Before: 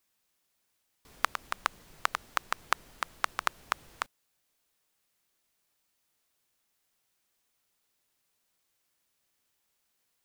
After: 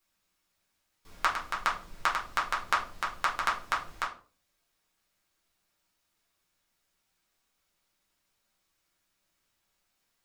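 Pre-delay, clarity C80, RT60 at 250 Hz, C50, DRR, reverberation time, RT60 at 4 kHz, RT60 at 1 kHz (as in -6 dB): 5 ms, 15.0 dB, 0.50 s, 9.5 dB, -5.0 dB, 0.40 s, 0.30 s, 0.35 s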